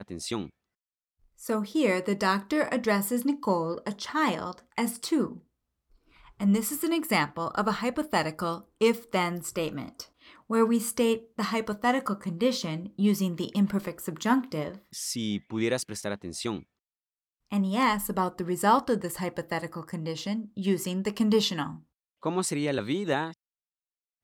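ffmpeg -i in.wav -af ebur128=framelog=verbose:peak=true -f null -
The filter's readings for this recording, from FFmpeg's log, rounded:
Integrated loudness:
  I:         -28.5 LUFS
  Threshold: -38.9 LUFS
Loudness range:
  LRA:         2.7 LU
  Threshold: -49.0 LUFS
  LRA low:   -30.5 LUFS
  LRA high:  -27.7 LUFS
True peak:
  Peak:      -11.3 dBFS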